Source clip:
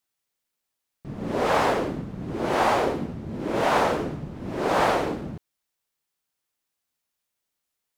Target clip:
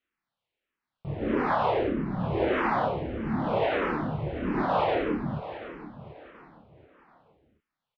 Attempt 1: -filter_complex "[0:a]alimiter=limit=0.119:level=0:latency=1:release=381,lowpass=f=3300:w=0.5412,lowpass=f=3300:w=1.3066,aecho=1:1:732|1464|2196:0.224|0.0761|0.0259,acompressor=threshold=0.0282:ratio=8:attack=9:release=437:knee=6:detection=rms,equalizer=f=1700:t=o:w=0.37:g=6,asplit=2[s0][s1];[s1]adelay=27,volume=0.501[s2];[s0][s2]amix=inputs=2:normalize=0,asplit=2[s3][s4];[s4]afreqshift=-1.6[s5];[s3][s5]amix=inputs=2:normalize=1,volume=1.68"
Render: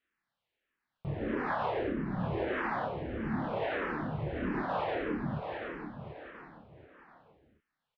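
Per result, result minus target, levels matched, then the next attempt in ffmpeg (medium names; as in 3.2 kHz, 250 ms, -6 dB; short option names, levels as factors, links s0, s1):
compression: peak gain reduction +9 dB; 2 kHz band +3.0 dB
-filter_complex "[0:a]alimiter=limit=0.119:level=0:latency=1:release=381,lowpass=f=3300:w=0.5412,lowpass=f=3300:w=1.3066,equalizer=f=1700:t=o:w=0.37:g=6,asplit=2[s0][s1];[s1]adelay=27,volume=0.501[s2];[s0][s2]amix=inputs=2:normalize=0,aecho=1:1:732|1464|2196:0.224|0.0761|0.0259,asplit=2[s3][s4];[s4]afreqshift=-1.6[s5];[s3][s5]amix=inputs=2:normalize=1,volume=1.68"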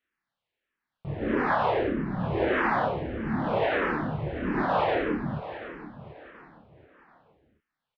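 2 kHz band +3.5 dB
-filter_complex "[0:a]alimiter=limit=0.119:level=0:latency=1:release=381,lowpass=f=3300:w=0.5412,lowpass=f=3300:w=1.3066,asplit=2[s0][s1];[s1]adelay=27,volume=0.501[s2];[s0][s2]amix=inputs=2:normalize=0,aecho=1:1:732|1464|2196:0.224|0.0761|0.0259,asplit=2[s3][s4];[s4]afreqshift=-1.6[s5];[s3][s5]amix=inputs=2:normalize=1,volume=1.68"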